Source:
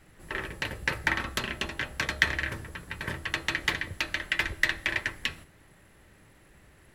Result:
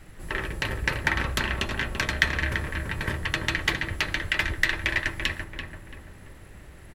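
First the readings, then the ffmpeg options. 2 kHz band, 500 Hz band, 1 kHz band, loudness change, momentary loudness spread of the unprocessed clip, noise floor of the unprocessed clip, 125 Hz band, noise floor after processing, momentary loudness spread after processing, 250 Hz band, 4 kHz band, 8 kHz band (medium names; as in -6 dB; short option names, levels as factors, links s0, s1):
+3.0 dB, +4.5 dB, +3.5 dB, +3.0 dB, 10 LU, -58 dBFS, +8.0 dB, -47 dBFS, 11 LU, +5.5 dB, +3.0 dB, +2.5 dB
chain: -filter_complex "[0:a]lowshelf=f=74:g=9,asplit=2[s0][s1];[s1]acompressor=threshold=0.0158:ratio=6,volume=1[s2];[s0][s2]amix=inputs=2:normalize=0,asplit=2[s3][s4];[s4]adelay=337,lowpass=f=1500:p=1,volume=0.631,asplit=2[s5][s6];[s6]adelay=337,lowpass=f=1500:p=1,volume=0.48,asplit=2[s7][s8];[s8]adelay=337,lowpass=f=1500:p=1,volume=0.48,asplit=2[s9][s10];[s10]adelay=337,lowpass=f=1500:p=1,volume=0.48,asplit=2[s11][s12];[s12]adelay=337,lowpass=f=1500:p=1,volume=0.48,asplit=2[s13][s14];[s14]adelay=337,lowpass=f=1500:p=1,volume=0.48[s15];[s3][s5][s7][s9][s11][s13][s15]amix=inputs=7:normalize=0"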